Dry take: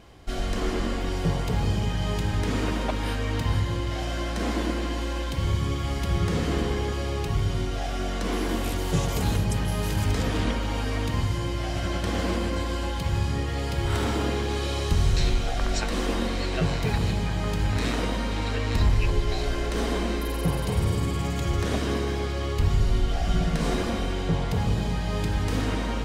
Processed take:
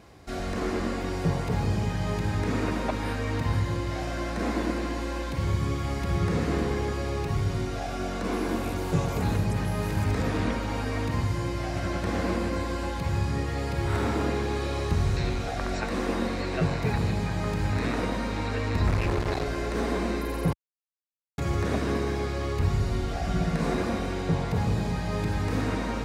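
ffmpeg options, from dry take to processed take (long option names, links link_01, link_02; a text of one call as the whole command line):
ffmpeg -i in.wav -filter_complex "[0:a]asettb=1/sr,asplit=3[link_01][link_02][link_03];[link_01]atrim=end=7.794[link_04];[link_02]atrim=start=7.79:end=9.2,asetpts=PTS-STARTPTS,afade=type=in:duration=0.004:curve=qsin,afade=type=out:start_time=1.406:duration=0.004:curve=qsin,bandreject=frequency=1900:width=12[link_05];[link_03]atrim=start=9.196[link_06];[link_04][link_05]acrossfade=duration=0.004:curve1=hsin:curve2=qsin[link_07];[link_07][link_06]acrossfade=duration=0.004:curve1=qsin:curve2=hsin,asettb=1/sr,asplit=3[link_08][link_09][link_10];[link_08]atrim=end=18.874[link_11];[link_09]atrim=start=18.87:end=19.44,asetpts=PTS-STARTPTS,afade=type=in:duration=0.004:curve=qsin,afade=type=out:start_time=0.566:duration=0.004:curve=qsin,acrusher=bits=3:mix=0:aa=0.5[link_12];[link_10]atrim=start=19.436[link_13];[link_11][link_12]acrossfade=duration=0.004:curve1=hsin:curve2=qsin[link_14];[link_14][link_13]acrossfade=duration=0.004:curve1=qsin:curve2=hsin,asplit=3[link_15][link_16][link_17];[link_15]atrim=end=20.53,asetpts=PTS-STARTPTS,afade=type=out:start_time=20.526:duration=0.004:curve=hsin[link_18];[link_16]atrim=start=20.53:end=21.38,asetpts=PTS-STARTPTS,volume=0[link_19];[link_17]atrim=start=21.38,asetpts=PTS-STARTPTS,afade=type=in:duration=0.004:curve=hsin[link_20];[link_18][link_19][link_20]concat=n=3:v=0:a=1,equalizer=frequency=3100:width_type=o:width=0.2:gain=-9,acrossover=split=3000[link_21][link_22];[link_22]acompressor=threshold=-44dB:ratio=4:attack=1:release=60[link_23];[link_21][link_23]amix=inputs=2:normalize=0,highpass=66" out.wav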